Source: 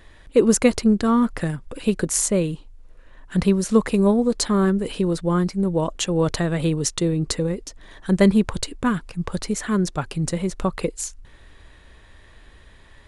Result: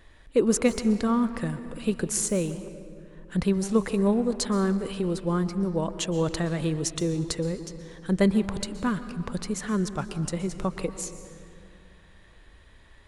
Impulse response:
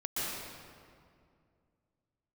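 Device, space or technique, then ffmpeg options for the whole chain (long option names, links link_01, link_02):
saturated reverb return: -filter_complex "[0:a]asplit=2[link_01][link_02];[1:a]atrim=start_sample=2205[link_03];[link_02][link_03]afir=irnorm=-1:irlink=0,asoftclip=type=tanh:threshold=-9.5dB,volume=-15dB[link_04];[link_01][link_04]amix=inputs=2:normalize=0,volume=-6.5dB"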